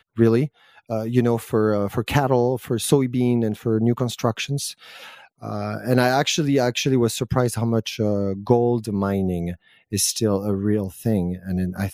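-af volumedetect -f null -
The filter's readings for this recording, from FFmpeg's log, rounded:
mean_volume: -21.6 dB
max_volume: -3.3 dB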